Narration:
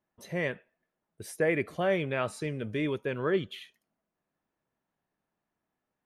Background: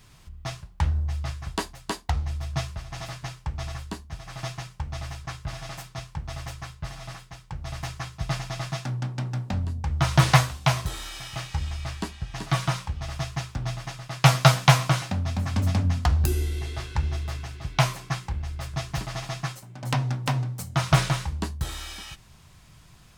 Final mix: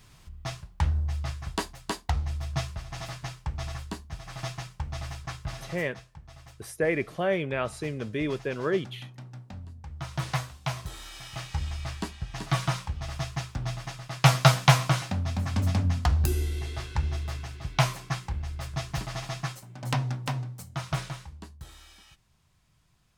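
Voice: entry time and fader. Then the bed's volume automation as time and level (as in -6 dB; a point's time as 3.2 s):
5.40 s, +1.0 dB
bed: 5.51 s -1.5 dB
6.1 s -14 dB
10.14 s -14 dB
11.59 s -2 dB
19.92 s -2 dB
21.42 s -15 dB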